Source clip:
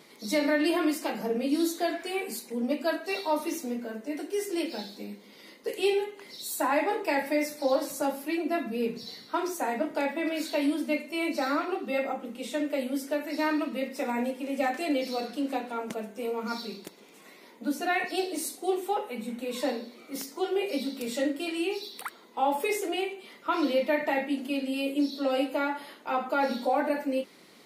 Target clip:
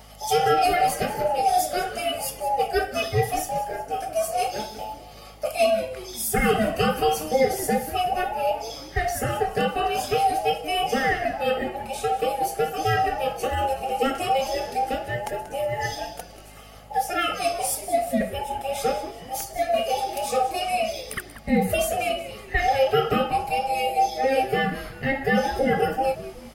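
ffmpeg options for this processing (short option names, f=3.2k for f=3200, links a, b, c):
-filter_complex "[0:a]afftfilt=real='real(if(between(b,1,1008),(2*floor((b-1)/48)+1)*48-b,b),0)':imag='imag(if(between(b,1,1008),(2*floor((b-1)/48)+1)*48-b,b),0)*if(between(b,1,1008),-1,1)':win_size=2048:overlap=0.75,aeval=exprs='val(0)+0.002*(sin(2*PI*50*n/s)+sin(2*PI*2*50*n/s)/2+sin(2*PI*3*50*n/s)/3+sin(2*PI*4*50*n/s)/4+sin(2*PI*5*50*n/s)/5)':c=same,superequalizer=6b=0.282:13b=0.562:16b=1.58,asplit=5[a][b][c][d][e];[b]adelay=193,afreqshift=-140,volume=-14dB[f];[c]adelay=386,afreqshift=-280,volume=-20.7dB[g];[d]adelay=579,afreqshift=-420,volume=-27.5dB[h];[e]adelay=772,afreqshift=-560,volume=-34.2dB[i];[a][f][g][h][i]amix=inputs=5:normalize=0,asetrate=45938,aresample=44100,volume=5.5dB"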